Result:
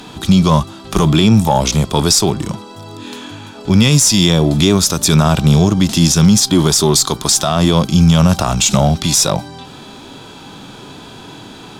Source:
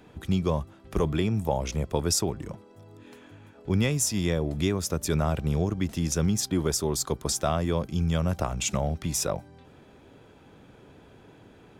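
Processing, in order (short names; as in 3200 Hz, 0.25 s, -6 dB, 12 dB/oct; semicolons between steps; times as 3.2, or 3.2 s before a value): bell 70 Hz -11.5 dB 1.9 oct; harmonic-percussive split harmonic +9 dB; graphic EQ 500/1000/2000/4000/8000 Hz -9/+3/-7/+9/+4 dB; in parallel at -7 dB: one-sided clip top -25.5 dBFS; on the sum: maximiser +13.5 dB; gain -1 dB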